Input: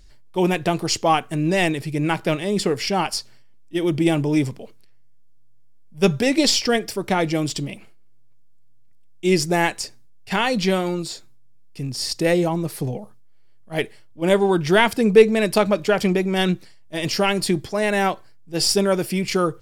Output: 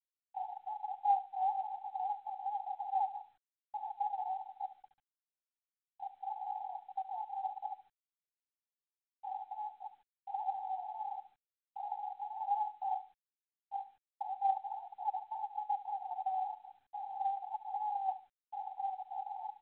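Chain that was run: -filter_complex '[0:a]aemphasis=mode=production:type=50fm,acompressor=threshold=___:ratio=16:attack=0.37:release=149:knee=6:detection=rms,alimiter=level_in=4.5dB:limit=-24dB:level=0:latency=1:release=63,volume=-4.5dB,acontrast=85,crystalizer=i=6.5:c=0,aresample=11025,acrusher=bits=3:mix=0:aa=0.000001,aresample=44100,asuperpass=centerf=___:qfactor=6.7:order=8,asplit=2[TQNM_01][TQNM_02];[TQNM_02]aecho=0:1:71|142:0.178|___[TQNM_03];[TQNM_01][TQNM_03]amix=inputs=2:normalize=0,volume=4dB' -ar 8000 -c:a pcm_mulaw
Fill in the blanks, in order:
-27dB, 800, 0.0409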